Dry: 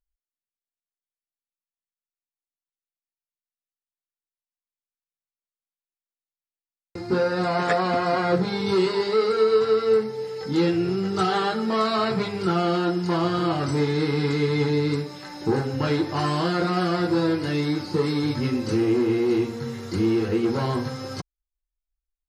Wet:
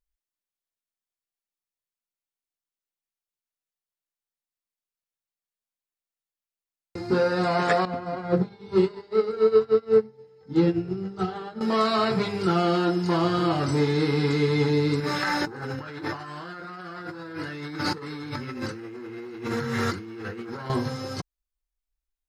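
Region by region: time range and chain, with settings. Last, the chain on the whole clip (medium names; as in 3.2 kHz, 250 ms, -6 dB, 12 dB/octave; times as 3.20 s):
7.85–11.61 s: tilt EQ -2.5 dB/octave + hum notches 50/100/150/200/250/300/350/400/450/500 Hz + upward expansion 2.5:1, over -29 dBFS
15.00–20.70 s: peaking EQ 1.5 kHz +11 dB 1.1 oct + compressor with a negative ratio -34 dBFS + short-mantissa float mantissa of 6-bit
whole clip: none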